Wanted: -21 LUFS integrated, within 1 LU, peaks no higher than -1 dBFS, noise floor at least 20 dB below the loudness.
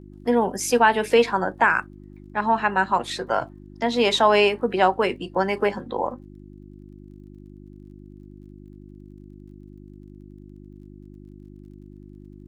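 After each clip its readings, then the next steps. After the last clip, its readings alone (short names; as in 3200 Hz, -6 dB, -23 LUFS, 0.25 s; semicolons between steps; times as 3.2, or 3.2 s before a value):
ticks 28/s; hum 50 Hz; harmonics up to 350 Hz; hum level -42 dBFS; loudness -21.5 LUFS; peak -5.0 dBFS; loudness target -21.0 LUFS
-> de-click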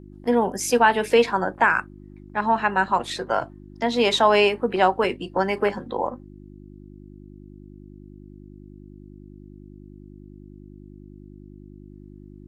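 ticks 0/s; hum 50 Hz; harmonics up to 350 Hz; hum level -42 dBFS
-> de-hum 50 Hz, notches 7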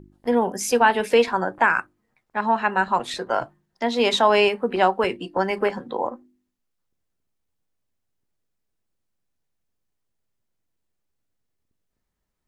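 hum none; loudness -22.0 LUFS; peak -5.0 dBFS; loudness target -21.0 LUFS
-> gain +1 dB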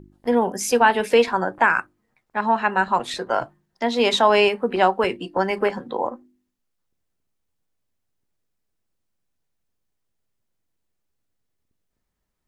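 loudness -21.0 LUFS; peak -4.0 dBFS; noise floor -76 dBFS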